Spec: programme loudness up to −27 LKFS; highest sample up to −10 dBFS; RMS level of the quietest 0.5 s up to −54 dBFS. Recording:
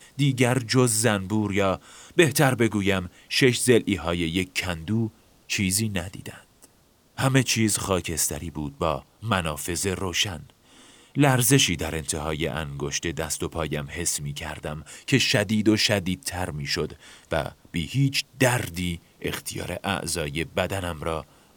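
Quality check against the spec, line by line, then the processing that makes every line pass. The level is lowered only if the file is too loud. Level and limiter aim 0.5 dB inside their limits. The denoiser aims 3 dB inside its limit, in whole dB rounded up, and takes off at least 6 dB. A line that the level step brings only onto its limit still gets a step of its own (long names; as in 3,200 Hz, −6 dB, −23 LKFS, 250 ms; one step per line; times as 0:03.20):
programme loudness −24.5 LKFS: out of spec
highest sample −5.0 dBFS: out of spec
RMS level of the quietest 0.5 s −60 dBFS: in spec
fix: level −3 dB
brickwall limiter −10.5 dBFS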